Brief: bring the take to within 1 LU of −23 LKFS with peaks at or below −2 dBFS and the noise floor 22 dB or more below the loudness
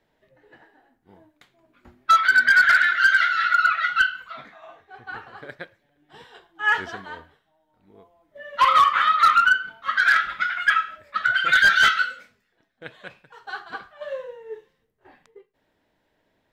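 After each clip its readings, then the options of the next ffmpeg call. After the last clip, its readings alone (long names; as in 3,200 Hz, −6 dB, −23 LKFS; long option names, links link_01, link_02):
integrated loudness −18.0 LKFS; sample peak −9.5 dBFS; target loudness −23.0 LKFS
→ -af "volume=-5dB"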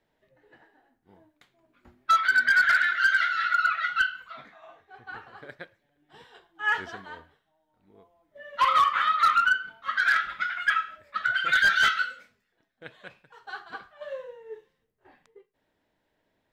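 integrated loudness −23.0 LKFS; sample peak −14.5 dBFS; background noise floor −76 dBFS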